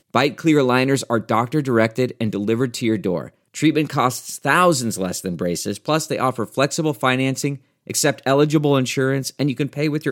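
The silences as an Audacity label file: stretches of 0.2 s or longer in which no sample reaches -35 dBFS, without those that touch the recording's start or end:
3.290000	3.540000	silence
7.570000	7.870000	silence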